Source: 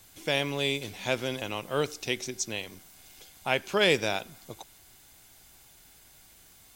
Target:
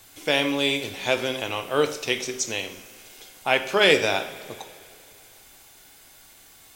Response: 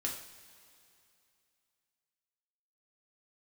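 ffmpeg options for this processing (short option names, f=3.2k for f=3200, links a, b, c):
-filter_complex "[0:a]bass=f=250:g=-7,treble=f=4k:g=-2,asplit=2[a][b];[1:a]atrim=start_sample=2205[c];[b][c]afir=irnorm=-1:irlink=0,volume=-1dB[d];[a][d]amix=inputs=2:normalize=0,volume=1dB"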